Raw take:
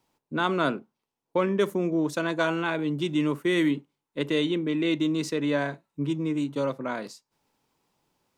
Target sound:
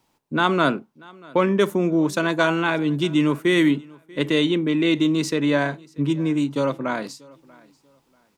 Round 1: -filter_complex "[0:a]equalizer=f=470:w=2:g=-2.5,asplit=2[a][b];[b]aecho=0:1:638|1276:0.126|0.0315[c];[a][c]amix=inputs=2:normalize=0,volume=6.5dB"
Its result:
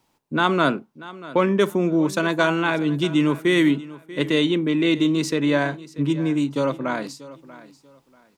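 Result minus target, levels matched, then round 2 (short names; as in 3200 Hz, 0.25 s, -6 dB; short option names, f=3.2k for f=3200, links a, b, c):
echo-to-direct +6.5 dB
-filter_complex "[0:a]equalizer=f=470:w=2:g=-2.5,asplit=2[a][b];[b]aecho=0:1:638|1276:0.0596|0.0149[c];[a][c]amix=inputs=2:normalize=0,volume=6.5dB"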